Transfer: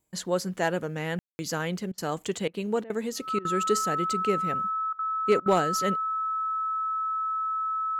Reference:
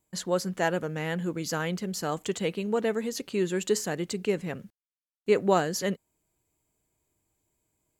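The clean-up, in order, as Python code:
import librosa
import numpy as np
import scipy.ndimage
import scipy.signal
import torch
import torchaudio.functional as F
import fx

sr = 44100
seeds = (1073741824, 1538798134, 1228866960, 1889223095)

y = fx.fix_declip(x, sr, threshold_db=-13.5)
y = fx.notch(y, sr, hz=1300.0, q=30.0)
y = fx.fix_ambience(y, sr, seeds[0], print_start_s=0.0, print_end_s=0.5, start_s=1.19, end_s=1.39)
y = fx.fix_interpolate(y, sr, at_s=(1.92, 2.48, 2.84, 3.39, 4.93, 5.4), length_ms=58.0)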